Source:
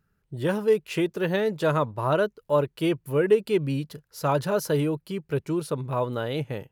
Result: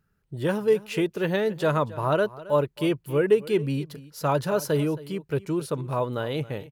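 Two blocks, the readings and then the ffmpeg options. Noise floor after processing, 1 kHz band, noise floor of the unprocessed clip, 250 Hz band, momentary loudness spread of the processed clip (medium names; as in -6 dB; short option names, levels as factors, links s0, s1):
-70 dBFS, 0.0 dB, -73 dBFS, 0.0 dB, 8 LU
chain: -af "aecho=1:1:271:0.119"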